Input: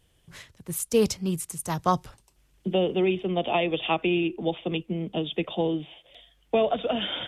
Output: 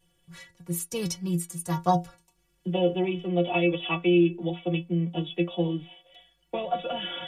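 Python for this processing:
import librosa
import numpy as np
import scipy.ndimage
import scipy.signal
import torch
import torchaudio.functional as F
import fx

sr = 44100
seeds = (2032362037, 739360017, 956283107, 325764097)

y = fx.stiff_resonator(x, sr, f0_hz=170.0, decay_s=0.21, stiffness=0.008)
y = y * 10.0 ** (8.0 / 20.0)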